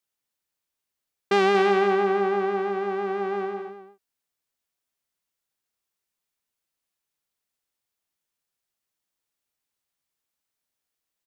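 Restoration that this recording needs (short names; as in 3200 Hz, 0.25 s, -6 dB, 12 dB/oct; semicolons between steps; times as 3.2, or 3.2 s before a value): inverse comb 0.233 s -10 dB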